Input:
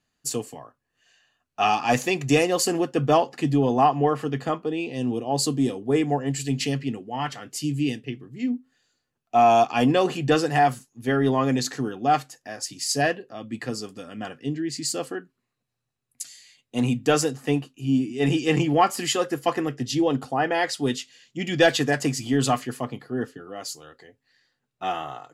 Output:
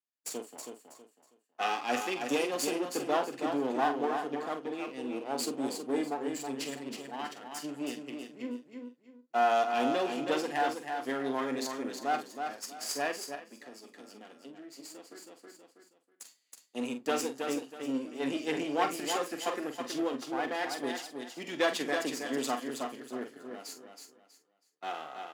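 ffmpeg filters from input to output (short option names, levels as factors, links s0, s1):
-filter_complex "[0:a]aeval=exprs='if(lt(val(0),0),0.251*val(0),val(0))':c=same,agate=range=0.158:threshold=0.00708:ratio=16:detection=peak,highpass=f=240:w=0.5412,highpass=f=240:w=1.3066,aecho=1:1:322|644|966:0.501|0.135|0.0365,asettb=1/sr,asplit=3[s0][s1][s2];[s0]atrim=end=13.354[s3];[s1]atrim=start=13.35:end=16.22,asetpts=PTS-STARTPTS,afade=t=in:d=0.004:c=qsin,afade=t=out:st=2.866:d=0.004:c=qsin,acompressor=threshold=0.00794:ratio=3[s4];[s2]atrim=start=16.216[s5];[s3][s4]acrossfade=d=0.004:c1=hsin:c2=qsin[s6];[s6][s5]acrossfade=d=0.004:c1=qsin:c2=hsin,asplit=2[s7][s8];[s8]adelay=45,volume=0.335[s9];[s7][s9]amix=inputs=2:normalize=0,volume=0.447"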